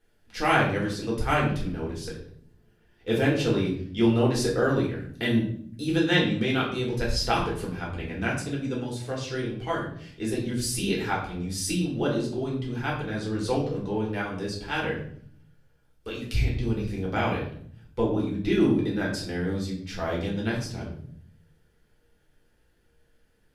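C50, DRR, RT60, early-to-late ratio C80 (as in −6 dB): 5.5 dB, −5.0 dB, 0.60 s, 9.0 dB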